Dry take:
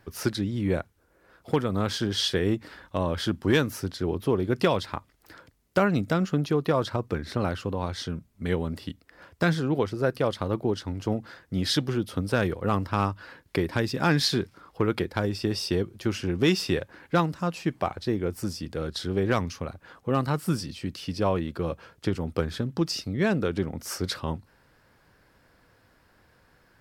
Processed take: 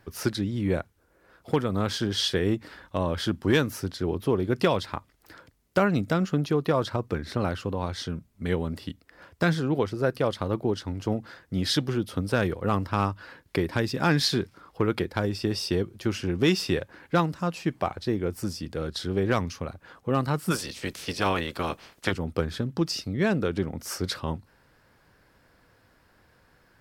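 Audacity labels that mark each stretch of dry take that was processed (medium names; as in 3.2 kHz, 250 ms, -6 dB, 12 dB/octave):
20.500000	22.110000	spectral peaks clipped ceiling under each frame's peak by 20 dB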